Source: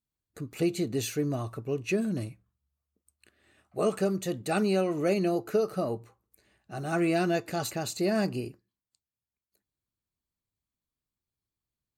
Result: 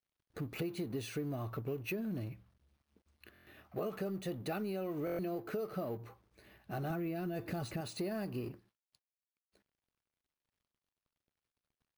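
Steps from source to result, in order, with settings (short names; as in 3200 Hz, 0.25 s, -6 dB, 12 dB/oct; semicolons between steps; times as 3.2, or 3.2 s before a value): G.711 law mismatch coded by mu; 6.9–7.81 low shelf 270 Hz +10 dB; limiter -19 dBFS, peak gain reduction 6.5 dB; compressor, threshold -34 dBFS, peak gain reduction 11 dB; air absorption 98 m; careless resampling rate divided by 3×, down filtered, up hold; stuck buffer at 3.33/5.05, samples 1024, times 5; gain -1.5 dB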